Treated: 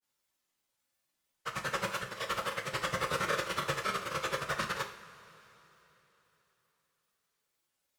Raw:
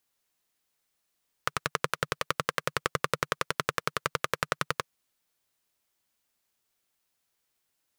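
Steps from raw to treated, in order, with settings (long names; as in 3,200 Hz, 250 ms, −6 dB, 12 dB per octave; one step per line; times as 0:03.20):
random phases in long frames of 50 ms
granular cloud, spray 20 ms, pitch spread up and down by 0 semitones
coupled-rooms reverb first 0.44 s, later 3.7 s, from −18 dB, DRR 3 dB
level −2.5 dB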